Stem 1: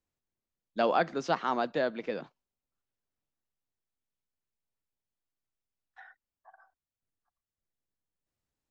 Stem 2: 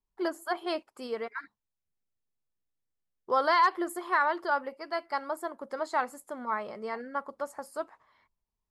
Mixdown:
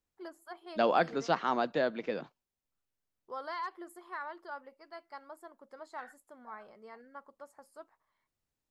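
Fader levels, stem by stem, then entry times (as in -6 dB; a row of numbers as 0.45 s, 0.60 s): -0.5 dB, -15.0 dB; 0.00 s, 0.00 s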